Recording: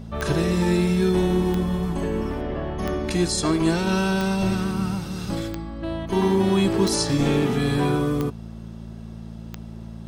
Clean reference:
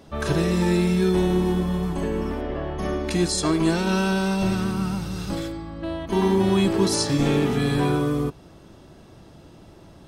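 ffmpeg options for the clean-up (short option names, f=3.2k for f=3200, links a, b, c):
-af "adeclick=t=4,bandreject=f=55.9:t=h:w=4,bandreject=f=111.8:t=h:w=4,bandreject=f=167.7:t=h:w=4,bandreject=f=223.6:t=h:w=4"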